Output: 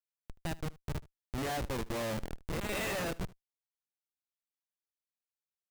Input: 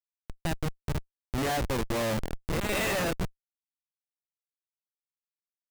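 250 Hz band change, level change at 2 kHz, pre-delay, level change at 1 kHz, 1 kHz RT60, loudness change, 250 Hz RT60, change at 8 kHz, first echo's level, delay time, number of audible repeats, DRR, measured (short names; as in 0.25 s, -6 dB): -6.5 dB, -6.5 dB, none, -6.5 dB, none, -6.5 dB, none, -6.5 dB, -21.0 dB, 76 ms, 1, none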